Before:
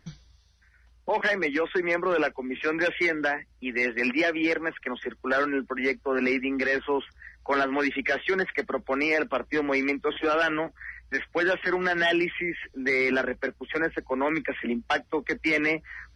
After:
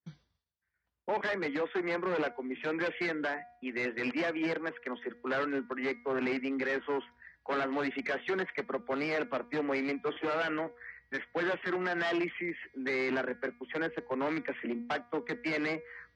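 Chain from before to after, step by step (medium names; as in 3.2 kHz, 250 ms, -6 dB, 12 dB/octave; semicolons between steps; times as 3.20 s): one-sided wavefolder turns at -22.5 dBFS; expander -49 dBFS; band-pass 140–5000 Hz; treble shelf 2.8 kHz -9 dB; de-hum 239.6 Hz, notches 10; trim -4.5 dB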